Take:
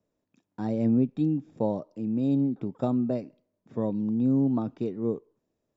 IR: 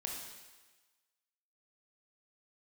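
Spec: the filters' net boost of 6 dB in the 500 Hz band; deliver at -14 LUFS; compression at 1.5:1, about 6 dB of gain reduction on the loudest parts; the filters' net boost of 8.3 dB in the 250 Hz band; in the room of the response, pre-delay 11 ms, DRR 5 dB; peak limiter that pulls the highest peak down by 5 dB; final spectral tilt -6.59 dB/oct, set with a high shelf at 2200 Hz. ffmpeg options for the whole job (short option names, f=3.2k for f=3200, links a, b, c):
-filter_complex "[0:a]equalizer=f=250:t=o:g=8,equalizer=f=500:t=o:g=4.5,highshelf=f=2.2k:g=5.5,acompressor=threshold=-29dB:ratio=1.5,alimiter=limit=-17.5dB:level=0:latency=1,asplit=2[a][b];[1:a]atrim=start_sample=2205,adelay=11[c];[b][c]afir=irnorm=-1:irlink=0,volume=-5dB[d];[a][d]amix=inputs=2:normalize=0,volume=11.5dB"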